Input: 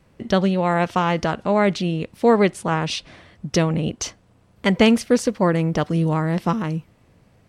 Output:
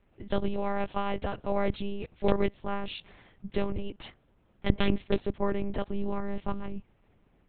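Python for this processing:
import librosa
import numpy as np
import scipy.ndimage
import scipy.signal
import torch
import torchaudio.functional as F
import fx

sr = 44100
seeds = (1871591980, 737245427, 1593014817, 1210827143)

y = (np.mod(10.0 ** (5.0 / 20.0) * x + 1.0, 2.0) - 1.0) / 10.0 ** (5.0 / 20.0)
y = fx.lpc_monotone(y, sr, seeds[0], pitch_hz=200.0, order=8)
y = fx.dynamic_eq(y, sr, hz=1600.0, q=1.0, threshold_db=-37.0, ratio=4.0, max_db=-4)
y = y * librosa.db_to_amplitude(-9.0)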